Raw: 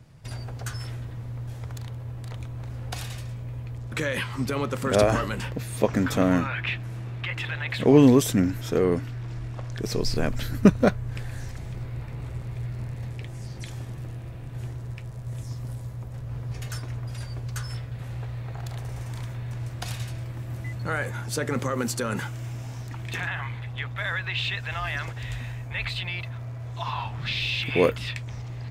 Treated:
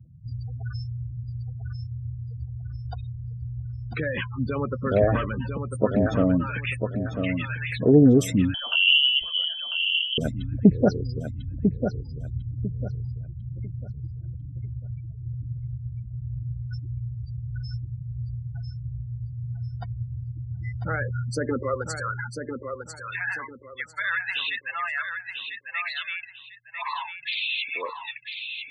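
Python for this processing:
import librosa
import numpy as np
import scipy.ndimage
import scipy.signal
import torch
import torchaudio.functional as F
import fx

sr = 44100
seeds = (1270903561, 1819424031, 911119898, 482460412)

y = fx.spec_gate(x, sr, threshold_db=-15, keep='strong')
y = fx.filter_sweep_highpass(y, sr, from_hz=65.0, to_hz=1200.0, start_s=20.97, end_s=22.05, q=1.6)
y = fx.echo_feedback(y, sr, ms=997, feedback_pct=28, wet_db=-6.5)
y = fx.freq_invert(y, sr, carrier_hz=3200, at=(8.54, 10.18))
y = fx.doppler_dist(y, sr, depth_ms=0.16)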